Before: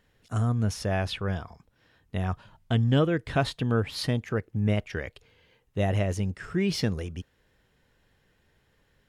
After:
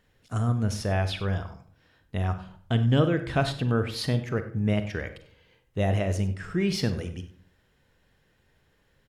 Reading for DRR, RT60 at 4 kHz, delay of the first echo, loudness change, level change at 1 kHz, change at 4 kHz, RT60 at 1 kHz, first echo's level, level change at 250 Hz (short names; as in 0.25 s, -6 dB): 9.0 dB, 0.30 s, 96 ms, +1.0 dB, +0.5 dB, +0.5 dB, 0.50 s, -17.0 dB, +1.0 dB